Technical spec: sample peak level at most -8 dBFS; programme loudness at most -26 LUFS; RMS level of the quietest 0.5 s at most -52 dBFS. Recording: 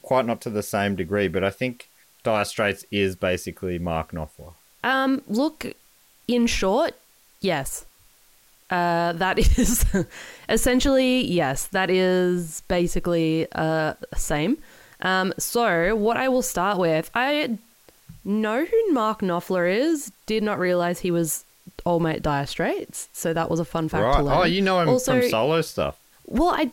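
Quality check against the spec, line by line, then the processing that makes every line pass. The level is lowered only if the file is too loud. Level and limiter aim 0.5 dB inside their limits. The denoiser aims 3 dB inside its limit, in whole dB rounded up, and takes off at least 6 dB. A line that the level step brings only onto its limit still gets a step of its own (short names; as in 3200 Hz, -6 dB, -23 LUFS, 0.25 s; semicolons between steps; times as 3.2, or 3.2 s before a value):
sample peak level -6.5 dBFS: fail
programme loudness -23.0 LUFS: fail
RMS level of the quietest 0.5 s -57 dBFS: OK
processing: gain -3.5 dB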